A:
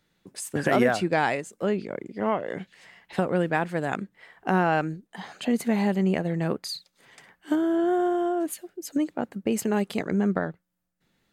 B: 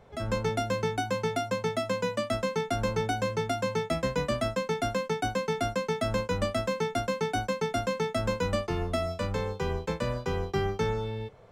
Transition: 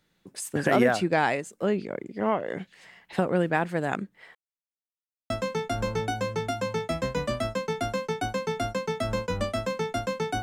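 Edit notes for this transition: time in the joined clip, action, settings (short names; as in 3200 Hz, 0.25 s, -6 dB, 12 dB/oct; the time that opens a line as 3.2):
A
4.35–5.3 mute
5.3 switch to B from 2.31 s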